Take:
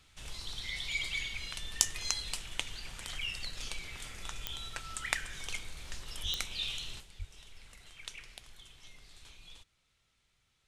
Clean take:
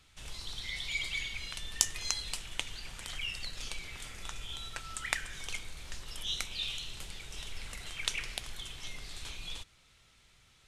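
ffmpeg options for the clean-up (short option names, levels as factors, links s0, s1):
-filter_complex "[0:a]adeclick=t=4,asplit=3[s0][s1][s2];[s0]afade=t=out:st=6.22:d=0.02[s3];[s1]highpass=f=140:w=0.5412,highpass=f=140:w=1.3066,afade=t=in:st=6.22:d=0.02,afade=t=out:st=6.34:d=0.02[s4];[s2]afade=t=in:st=6.34:d=0.02[s5];[s3][s4][s5]amix=inputs=3:normalize=0,asplit=3[s6][s7][s8];[s6]afade=t=out:st=7.18:d=0.02[s9];[s7]highpass=f=140:w=0.5412,highpass=f=140:w=1.3066,afade=t=in:st=7.18:d=0.02,afade=t=out:st=7.3:d=0.02[s10];[s8]afade=t=in:st=7.3:d=0.02[s11];[s9][s10][s11]amix=inputs=3:normalize=0,asetnsamples=n=441:p=0,asendcmd='7 volume volume 11.5dB',volume=1"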